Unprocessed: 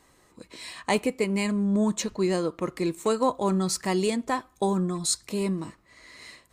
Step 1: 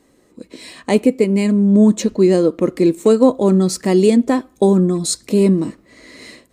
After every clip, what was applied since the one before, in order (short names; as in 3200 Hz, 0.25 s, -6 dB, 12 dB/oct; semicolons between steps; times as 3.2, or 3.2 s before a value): ten-band EQ 250 Hz +11 dB, 500 Hz +7 dB, 1000 Hz -5 dB; AGC gain up to 7.5 dB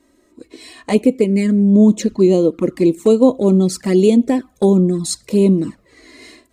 envelope flanger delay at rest 3.2 ms, full sweep at -9.5 dBFS; gain +1 dB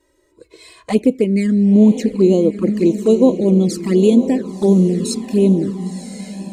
diffused feedback echo 1.022 s, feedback 50%, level -10 dB; envelope flanger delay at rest 2.1 ms, full sweep at -8.5 dBFS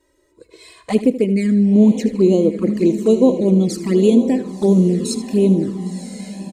feedback echo 78 ms, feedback 32%, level -14 dB; gain -1 dB